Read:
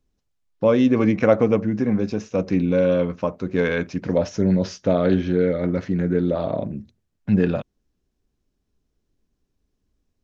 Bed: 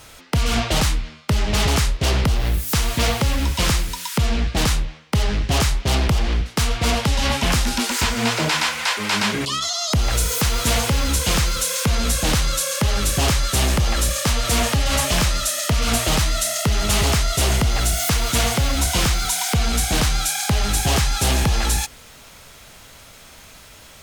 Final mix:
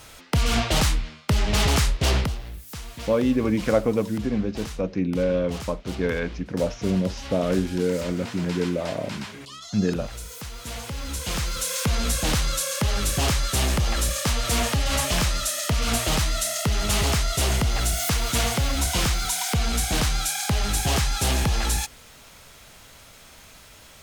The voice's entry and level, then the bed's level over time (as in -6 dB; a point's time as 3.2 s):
2.45 s, -4.5 dB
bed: 2.17 s -2 dB
2.45 s -17 dB
10.59 s -17 dB
11.77 s -4 dB